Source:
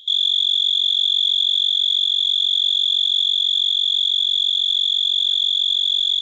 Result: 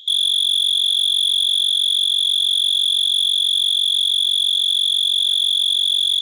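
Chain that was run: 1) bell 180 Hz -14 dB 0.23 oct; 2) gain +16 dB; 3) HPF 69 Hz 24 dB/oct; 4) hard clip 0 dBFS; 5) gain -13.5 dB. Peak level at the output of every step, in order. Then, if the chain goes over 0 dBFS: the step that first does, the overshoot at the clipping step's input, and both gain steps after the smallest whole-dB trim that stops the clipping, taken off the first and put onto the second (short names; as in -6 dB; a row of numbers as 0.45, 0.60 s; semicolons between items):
-10.0, +6.0, +6.0, 0.0, -13.5 dBFS; step 2, 6.0 dB; step 2 +10 dB, step 5 -7.5 dB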